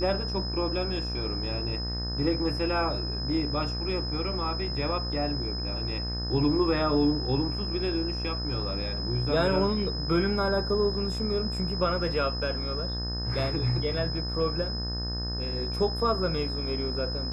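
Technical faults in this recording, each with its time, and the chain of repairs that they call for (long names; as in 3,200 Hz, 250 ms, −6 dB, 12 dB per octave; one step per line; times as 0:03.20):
mains buzz 60 Hz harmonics 31 −33 dBFS
whistle 5,100 Hz −34 dBFS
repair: notch filter 5,100 Hz, Q 30
hum removal 60 Hz, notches 31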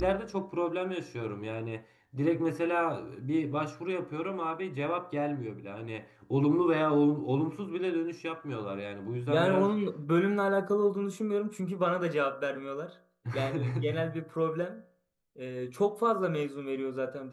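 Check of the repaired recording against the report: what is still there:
none of them is left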